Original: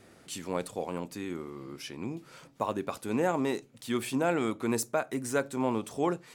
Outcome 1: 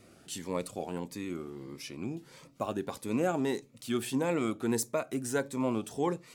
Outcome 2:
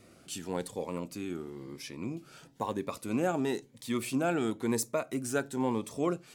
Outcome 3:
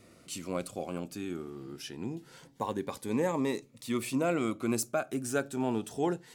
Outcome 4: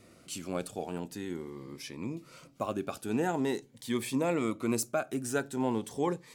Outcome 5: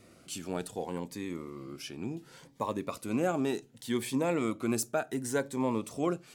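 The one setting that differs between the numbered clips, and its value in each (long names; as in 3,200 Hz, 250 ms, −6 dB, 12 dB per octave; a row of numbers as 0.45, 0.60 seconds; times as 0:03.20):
phaser whose notches keep moving one way, speed: 1.6, 1, 0.25, 0.45, 0.68 Hertz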